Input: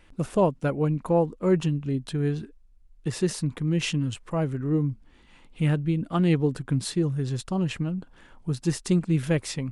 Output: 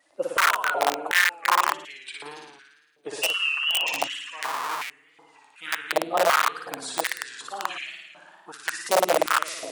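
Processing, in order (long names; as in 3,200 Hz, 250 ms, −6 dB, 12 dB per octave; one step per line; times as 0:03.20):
spectral magnitudes quantised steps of 30 dB
0:03.21–0:03.87: voice inversion scrambler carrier 3,000 Hz
on a send: flutter between parallel walls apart 9.7 metres, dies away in 1.3 s
0:04.43–0:04.90: on the sum: comparator with hysteresis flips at −27.5 dBFS
tape wow and flutter 85 cents
wrap-around overflow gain 14 dB
high-pass on a step sequencer 2.7 Hz 600–2,200 Hz
level −2.5 dB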